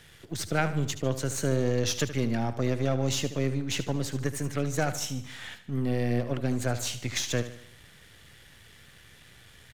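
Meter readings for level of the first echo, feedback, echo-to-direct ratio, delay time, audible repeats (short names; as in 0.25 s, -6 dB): -12.5 dB, 47%, -11.5 dB, 75 ms, 4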